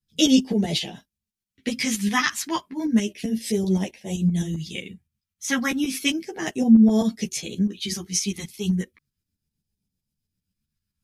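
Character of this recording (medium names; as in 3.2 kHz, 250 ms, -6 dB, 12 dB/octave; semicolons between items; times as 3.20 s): phasing stages 2, 0.33 Hz, lowest notch 550–1200 Hz; tremolo saw up 7.7 Hz, depth 60%; a shimmering, thickened sound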